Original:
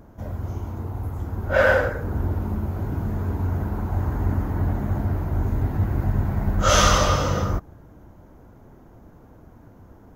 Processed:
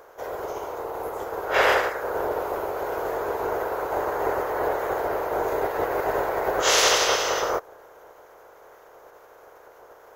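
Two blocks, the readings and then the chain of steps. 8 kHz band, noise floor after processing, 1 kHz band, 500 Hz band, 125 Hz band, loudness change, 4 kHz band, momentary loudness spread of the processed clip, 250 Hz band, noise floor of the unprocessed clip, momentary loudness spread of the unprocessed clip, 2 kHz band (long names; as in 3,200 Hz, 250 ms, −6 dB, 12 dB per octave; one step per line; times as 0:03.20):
+2.0 dB, −51 dBFS, +2.5 dB, +2.5 dB, −23.5 dB, −1.0 dB, +3.5 dB, 13 LU, −8.5 dB, −49 dBFS, 13 LU, 0.0 dB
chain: ceiling on every frequency bin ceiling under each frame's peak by 23 dB
low shelf with overshoot 320 Hz −12 dB, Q 3
level −3.5 dB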